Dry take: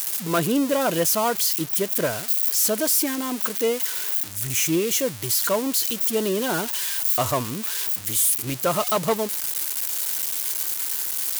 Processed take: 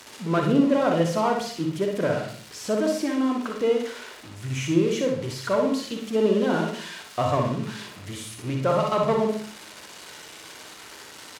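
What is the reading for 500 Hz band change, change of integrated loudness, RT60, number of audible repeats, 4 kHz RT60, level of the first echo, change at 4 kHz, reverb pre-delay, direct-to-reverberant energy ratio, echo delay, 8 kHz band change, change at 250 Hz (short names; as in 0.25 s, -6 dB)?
+1.5 dB, -3.0 dB, 0.50 s, 1, 0.40 s, -6.0 dB, -7.0 dB, 32 ms, 1.5 dB, 61 ms, -17.0 dB, +3.0 dB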